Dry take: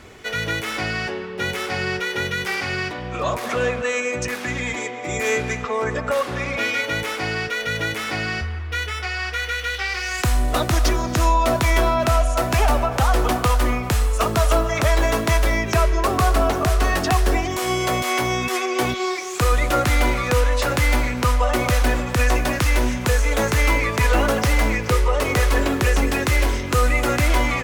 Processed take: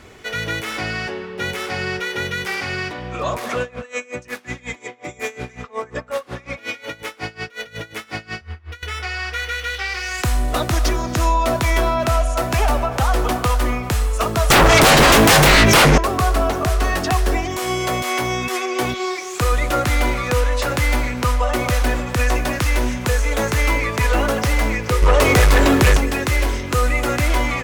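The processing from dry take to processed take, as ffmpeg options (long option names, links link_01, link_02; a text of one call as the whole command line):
ffmpeg -i in.wav -filter_complex "[0:a]asettb=1/sr,asplit=3[link_01][link_02][link_03];[link_01]atrim=end=3.614[link_04];[link_02]atrim=start=3.61:end=8.83,asetpts=PTS-STARTPTS,afade=type=in:duration=0.004:curve=qsin,afade=type=out:start_time=5.216:duration=0.004:curve=qsin,aeval=exprs='val(0)*pow(10,-24*(0.5-0.5*cos(2*PI*5.5*n/s))/20)':channel_layout=same[link_05];[link_03]atrim=start=8.826[link_06];[link_04][link_05]acrossfade=duration=0.004:curve1=hsin:curve2=qsin[link_07];[link_07][link_06]acrossfade=duration=0.004:curve1=qsin:curve2=hsin,asettb=1/sr,asplit=3[link_08][link_09][link_10];[link_08]atrim=end=14.504[link_11];[link_09]atrim=start=14.5:end=15.98,asetpts=PTS-STARTPTS,afade=type=in:duration=0.004:curve=qsin,afade=type=out:start_time=1.476:duration=0.004:curve=qsin,aeval=exprs='0.422*sin(PI/2*4.47*val(0)/0.422)':channel_layout=same[link_12];[link_10]atrim=start=15.976[link_13];[link_11][link_12]acrossfade=duration=0.004:curve1=hsin:curve2=qsin[link_14];[link_14][link_13]acrossfade=duration=0.004:curve1=qsin:curve2=hsin,asettb=1/sr,asplit=3[link_15][link_16][link_17];[link_15]atrim=end=25.024[link_18];[link_16]atrim=start=25.02:end=25.97,asetpts=PTS-STARTPTS,afade=type=in:duration=0.004:curve=qsin,afade=type=out:start_time=0.946:duration=0.004:curve=qsin,aeval=exprs='0.398*sin(PI/2*1.78*val(0)/0.398)':channel_layout=same[link_19];[link_17]atrim=start=25.966[link_20];[link_18][link_19]acrossfade=duration=0.004:curve1=hsin:curve2=qsin[link_21];[link_21][link_20]acrossfade=duration=0.004:curve1=qsin:curve2=hsin" out.wav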